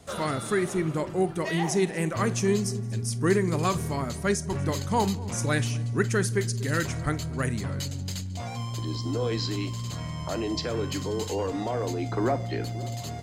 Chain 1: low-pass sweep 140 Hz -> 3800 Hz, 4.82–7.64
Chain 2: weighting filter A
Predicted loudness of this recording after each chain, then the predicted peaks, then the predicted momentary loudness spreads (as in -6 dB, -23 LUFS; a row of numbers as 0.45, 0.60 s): -28.0, -32.0 LUFS; -9.5, -13.0 dBFS; 8, 9 LU